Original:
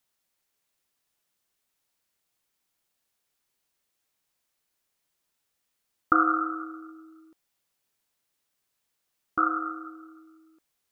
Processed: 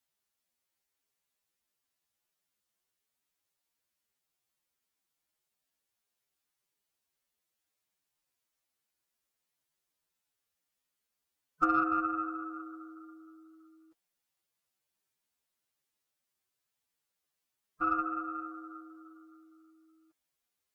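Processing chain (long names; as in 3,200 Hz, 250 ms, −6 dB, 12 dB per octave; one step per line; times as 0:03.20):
harmonic generator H 6 −33 dB, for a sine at −5 dBFS
phase-vocoder stretch with locked phases 1.9×
level −6 dB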